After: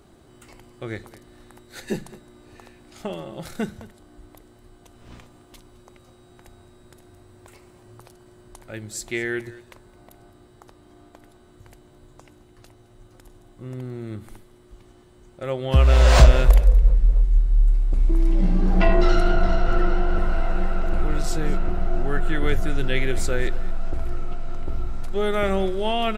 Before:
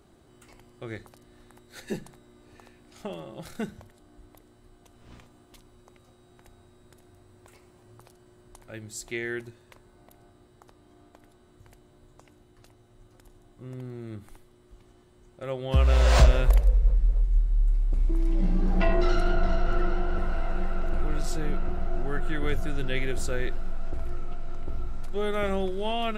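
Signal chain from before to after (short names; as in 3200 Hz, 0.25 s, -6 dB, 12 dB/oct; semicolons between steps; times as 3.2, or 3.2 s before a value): echo 0.214 s -19 dB; gain +5.5 dB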